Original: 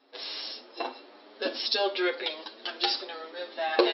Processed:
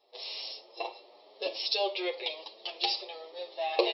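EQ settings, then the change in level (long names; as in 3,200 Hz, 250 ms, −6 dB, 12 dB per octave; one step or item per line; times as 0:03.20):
dynamic equaliser 2,500 Hz, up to +7 dB, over −50 dBFS, Q 2.9
phaser with its sweep stopped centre 630 Hz, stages 4
−1.5 dB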